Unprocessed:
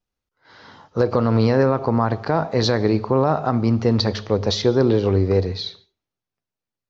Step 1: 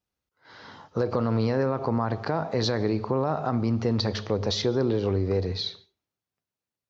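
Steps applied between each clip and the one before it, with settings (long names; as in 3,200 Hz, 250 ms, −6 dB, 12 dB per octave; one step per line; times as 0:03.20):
high-pass filter 53 Hz
in parallel at +1 dB: brickwall limiter −15 dBFS, peak gain reduction 10.5 dB
on the sum: downward compressor 1.5 to 1, threshold −19 dBFS, peak gain reduction 4 dB
level −7.5 dB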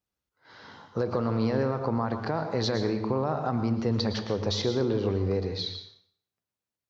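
convolution reverb RT60 0.55 s, pre-delay 103 ms, DRR 8.5 dB
level −2.5 dB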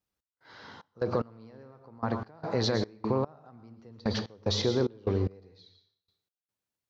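gate pattern "x.xx.x...." 74 BPM −24 dB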